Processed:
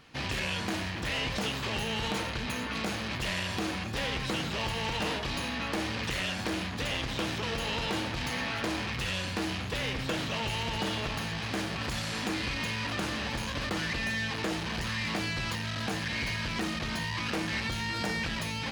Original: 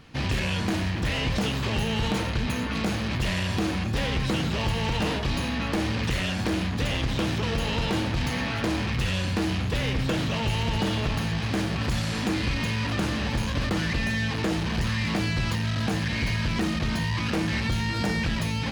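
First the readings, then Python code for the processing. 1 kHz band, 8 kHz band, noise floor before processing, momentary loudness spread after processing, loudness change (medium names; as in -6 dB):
-3.0 dB, -2.0 dB, -29 dBFS, 2 LU, -5.0 dB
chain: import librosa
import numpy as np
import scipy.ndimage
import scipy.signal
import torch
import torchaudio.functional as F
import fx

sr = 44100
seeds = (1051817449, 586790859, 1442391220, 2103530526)

y = fx.low_shelf(x, sr, hz=310.0, db=-9.5)
y = F.gain(torch.from_numpy(y), -2.0).numpy()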